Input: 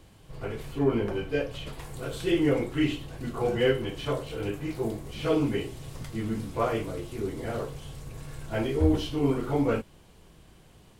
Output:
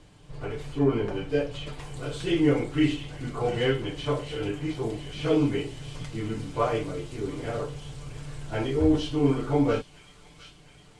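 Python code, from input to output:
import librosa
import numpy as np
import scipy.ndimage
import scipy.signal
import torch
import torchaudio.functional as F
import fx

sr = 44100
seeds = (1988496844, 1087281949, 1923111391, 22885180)

p1 = scipy.signal.sosfilt(scipy.signal.butter(4, 9100.0, 'lowpass', fs=sr, output='sos'), x)
p2 = p1 + 0.47 * np.pad(p1, (int(6.8 * sr / 1000.0), 0))[:len(p1)]
y = p2 + fx.echo_wet_highpass(p2, sr, ms=707, feedback_pct=60, hz=2800.0, wet_db=-8, dry=0)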